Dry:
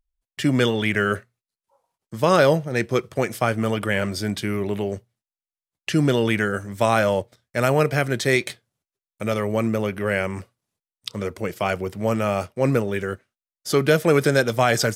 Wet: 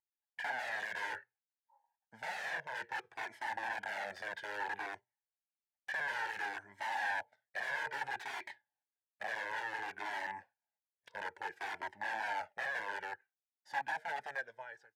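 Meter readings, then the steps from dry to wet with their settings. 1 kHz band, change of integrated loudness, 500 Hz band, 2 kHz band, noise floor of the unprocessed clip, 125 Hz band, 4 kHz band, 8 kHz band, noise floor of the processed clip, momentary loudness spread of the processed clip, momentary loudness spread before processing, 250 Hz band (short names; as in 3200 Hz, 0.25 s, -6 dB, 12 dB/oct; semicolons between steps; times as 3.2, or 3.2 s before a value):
-12.5 dB, -17.5 dB, -28.5 dB, -10.5 dB, under -85 dBFS, under -40 dB, -18.5 dB, -23.5 dB, under -85 dBFS, 9 LU, 12 LU, -37.0 dB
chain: ending faded out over 2.25 s; wrapped overs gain 21 dB; double band-pass 1200 Hz, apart 0.93 oct; cascading flanger falling 0.59 Hz; gain +2.5 dB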